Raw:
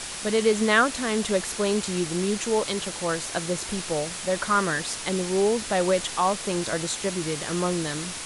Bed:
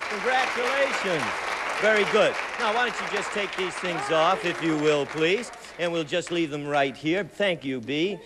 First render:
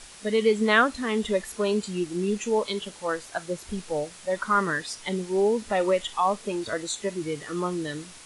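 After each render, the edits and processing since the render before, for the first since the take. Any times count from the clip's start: noise print and reduce 12 dB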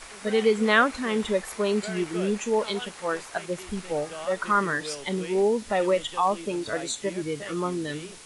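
add bed -16 dB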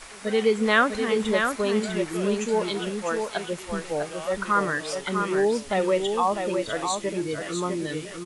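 delay 650 ms -5.5 dB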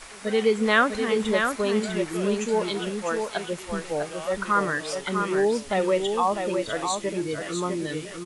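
no audible change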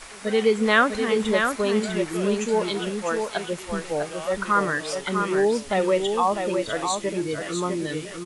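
trim +1.5 dB

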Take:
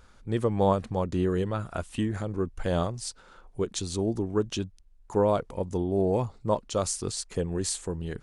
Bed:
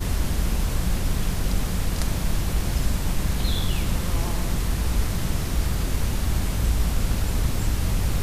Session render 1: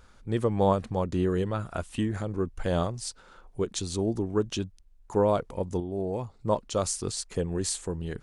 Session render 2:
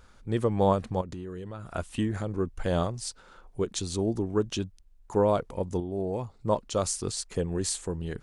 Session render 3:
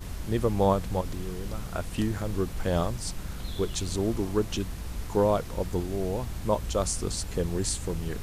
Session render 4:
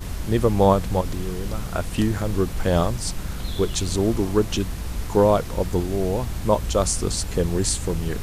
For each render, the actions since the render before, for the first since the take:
5.80–6.39 s: gain -6 dB
1.01–1.76 s: compression, threshold -35 dBFS
add bed -12.5 dB
trim +6.5 dB

